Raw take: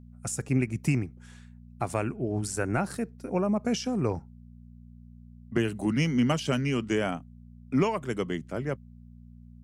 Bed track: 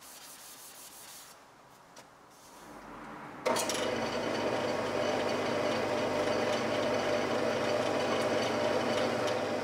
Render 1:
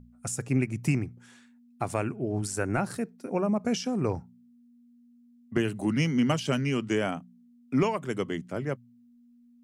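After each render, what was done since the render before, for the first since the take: de-hum 60 Hz, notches 3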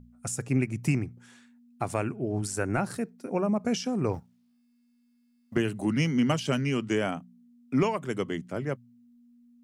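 4.13–5.56 s: companding laws mixed up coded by A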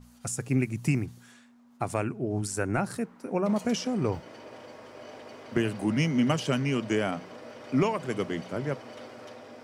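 add bed track -14 dB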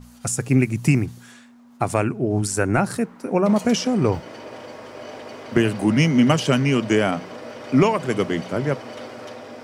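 trim +8.5 dB

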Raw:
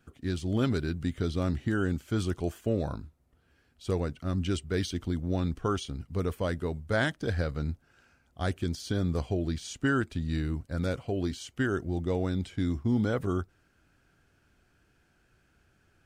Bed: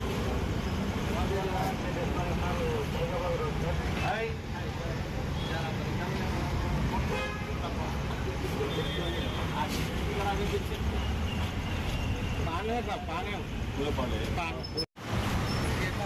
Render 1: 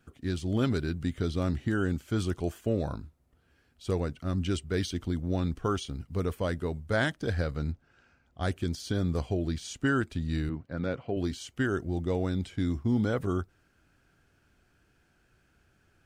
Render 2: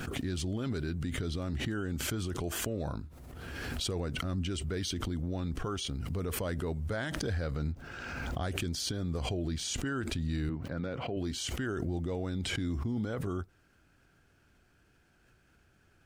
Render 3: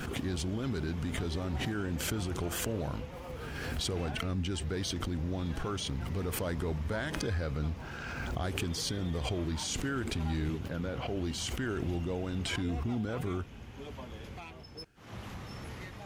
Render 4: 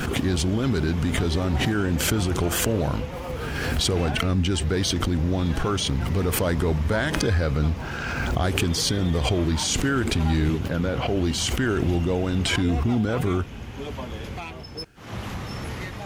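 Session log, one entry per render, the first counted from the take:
5.57–6.19 s: short-mantissa float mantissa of 6-bit; 7.72–8.43 s: distance through air 80 m; 10.49–11.17 s: band-pass 120–2900 Hz
peak limiter -26 dBFS, peak gain reduction 11.5 dB; swell ahead of each attack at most 24 dB/s
add bed -13.5 dB
trim +11 dB

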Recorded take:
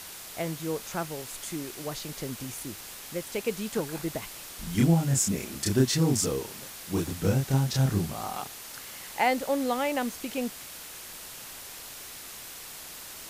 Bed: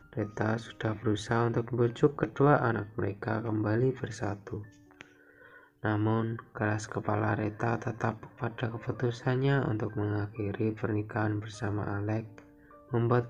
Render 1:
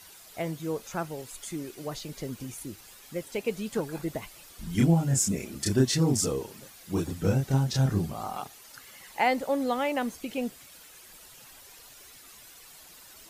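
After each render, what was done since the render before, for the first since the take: noise reduction 11 dB, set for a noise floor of -43 dBFS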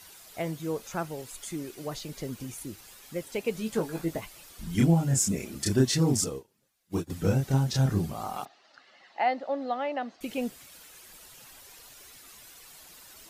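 3.53–4.21 s: doubling 18 ms -6.5 dB; 6.24–7.10 s: upward expansion 2.5:1, over -42 dBFS; 8.45–10.21 s: cabinet simulation 360–3900 Hz, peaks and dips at 450 Hz -9 dB, 690 Hz +4 dB, 990 Hz -7 dB, 1.5 kHz -4 dB, 2.3 kHz -9 dB, 3.3 kHz -7 dB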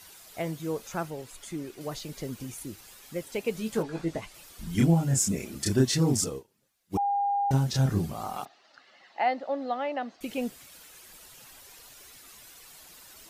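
1.10–1.81 s: treble shelf 4.9 kHz -6.5 dB; 3.82–4.33 s: low-pass 4.7 kHz -> 9.5 kHz; 6.97–7.51 s: bleep 806 Hz -23.5 dBFS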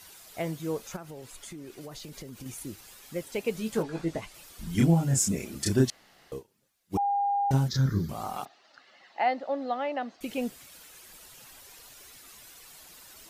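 0.96–2.46 s: compression 10:1, threshold -38 dBFS; 5.90–6.32 s: room tone; 7.68–8.09 s: static phaser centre 2.7 kHz, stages 6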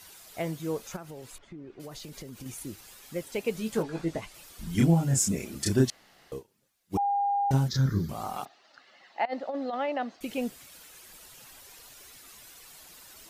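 1.38–1.80 s: tape spacing loss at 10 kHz 35 dB; 9.25–10.19 s: compressor with a negative ratio -30 dBFS, ratio -0.5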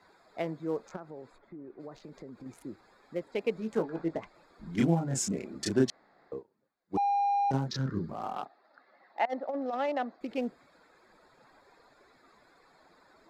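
local Wiener filter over 15 samples; three-band isolator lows -13 dB, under 190 Hz, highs -14 dB, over 6.4 kHz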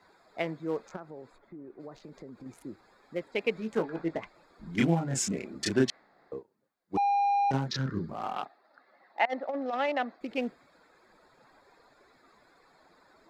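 dynamic bell 2.4 kHz, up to +8 dB, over -50 dBFS, Q 0.78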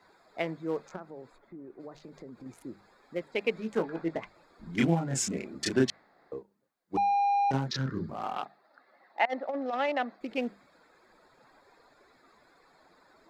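hum notches 50/100/150/200 Hz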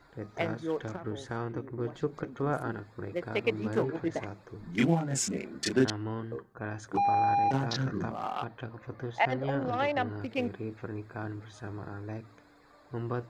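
add bed -7.5 dB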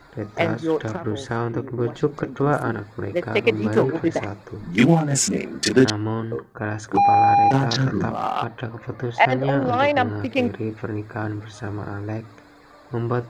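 trim +10.5 dB; peak limiter -3 dBFS, peak gain reduction 1.5 dB

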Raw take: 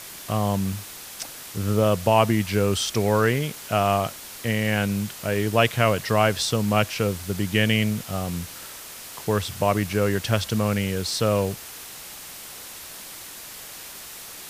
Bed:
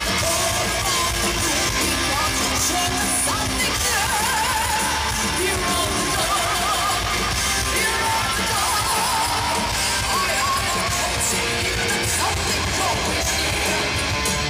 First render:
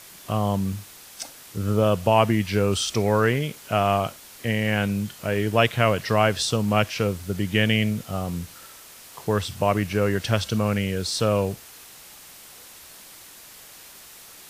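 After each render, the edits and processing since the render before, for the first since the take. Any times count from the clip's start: noise print and reduce 6 dB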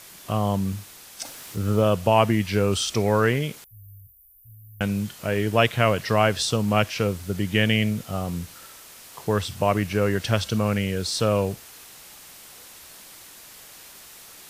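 1.25–1.82 s: companding laws mixed up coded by mu; 3.64–4.81 s: inverse Chebyshev band-stop 350–3600 Hz, stop band 80 dB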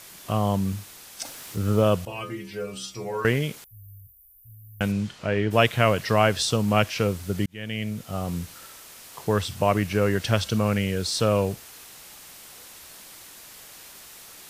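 2.05–3.25 s: inharmonic resonator 62 Hz, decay 0.64 s, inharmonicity 0.008; 4.91–5.50 s: low-pass 7.4 kHz -> 3.2 kHz; 7.46–8.32 s: fade in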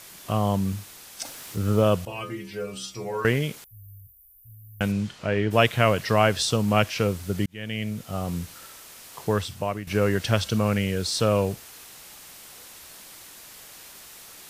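9.26–9.87 s: fade out, to -13.5 dB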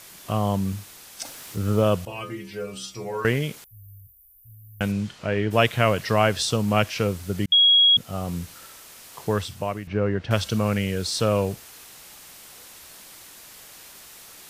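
7.52–7.97 s: bleep 3.31 kHz -12.5 dBFS; 9.87–10.31 s: tape spacing loss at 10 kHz 32 dB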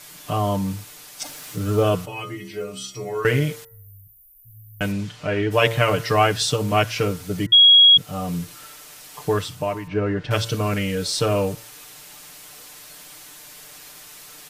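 comb 6.7 ms, depth 95%; de-hum 113.7 Hz, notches 17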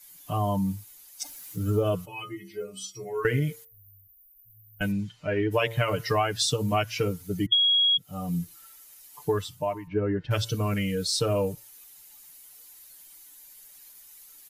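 expander on every frequency bin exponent 1.5; compression 12:1, threshold -20 dBFS, peak gain reduction 10.5 dB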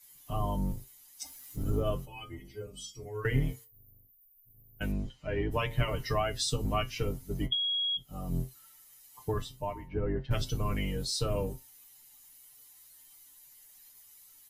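octave divider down 2 oct, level +3 dB; feedback comb 130 Hz, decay 0.15 s, harmonics all, mix 80%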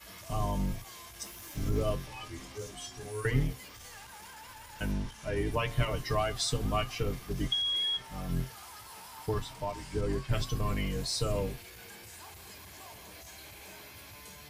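add bed -28.5 dB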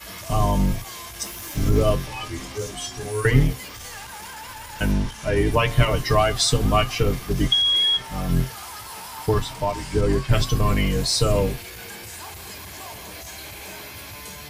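trim +11.5 dB

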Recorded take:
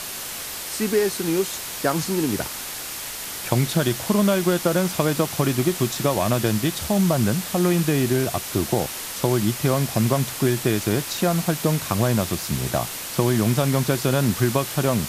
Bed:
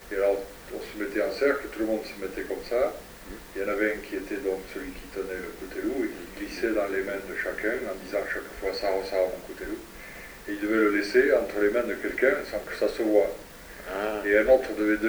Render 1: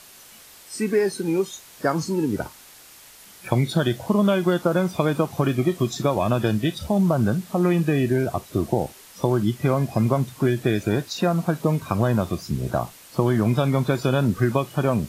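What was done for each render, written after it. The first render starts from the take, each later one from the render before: noise print and reduce 15 dB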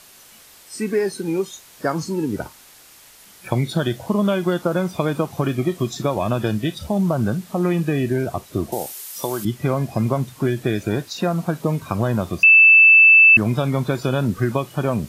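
8.72–9.45 s: RIAA curve recording; 12.43–13.37 s: bleep 2.64 kHz -6.5 dBFS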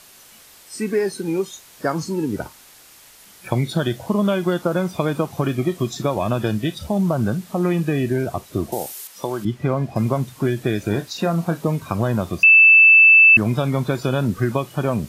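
9.07–9.96 s: low-pass 2.7 kHz 6 dB/octave; 10.80–11.68 s: doubling 30 ms -10.5 dB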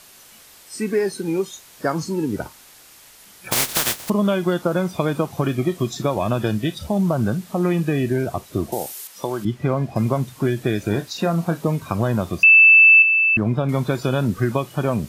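3.51–4.08 s: spectral contrast reduction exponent 0.14; 13.02–13.69 s: low-pass 1.3 kHz 6 dB/octave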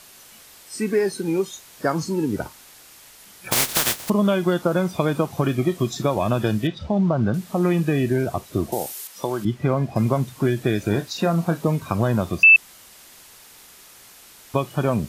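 6.67–7.34 s: distance through air 170 m; 12.56–14.54 s: room tone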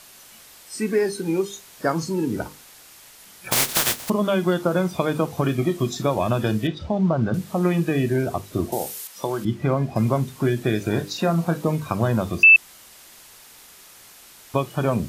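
hum notches 50/100/150/200/250/300/350/400/450/500 Hz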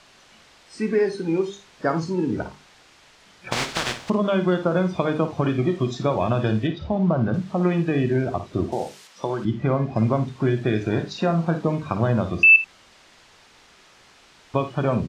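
distance through air 130 m; multi-tap echo 55/81 ms -11/-18.5 dB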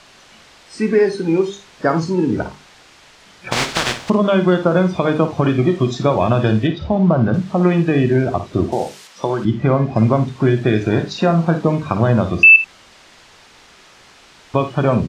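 trim +6.5 dB; peak limiter -2 dBFS, peak gain reduction 2.5 dB

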